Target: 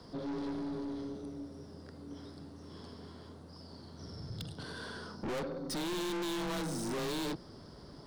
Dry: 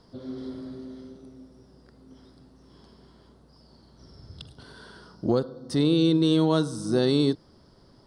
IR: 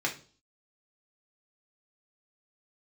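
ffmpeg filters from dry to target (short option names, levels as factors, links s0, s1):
-af "afreqshift=24,aeval=exprs='(tanh(100*val(0)+0.2)-tanh(0.2))/100':c=same,volume=1.78"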